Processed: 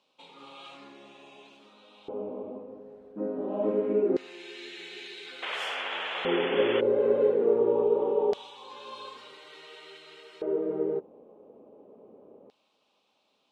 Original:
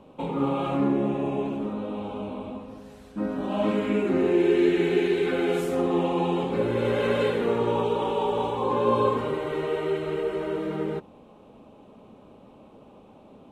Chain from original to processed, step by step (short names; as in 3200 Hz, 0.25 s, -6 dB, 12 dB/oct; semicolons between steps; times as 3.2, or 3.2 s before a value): LFO band-pass square 0.24 Hz 440–4700 Hz; painted sound noise, 5.42–6.81, 400–3500 Hz -37 dBFS; gain +3 dB